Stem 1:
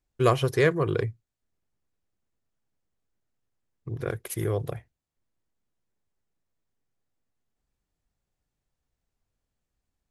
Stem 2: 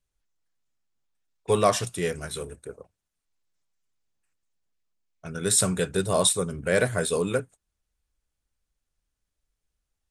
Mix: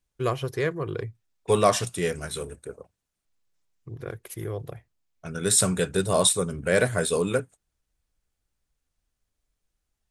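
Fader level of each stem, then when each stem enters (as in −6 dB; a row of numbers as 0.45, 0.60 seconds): −5.0, +1.0 decibels; 0.00, 0.00 seconds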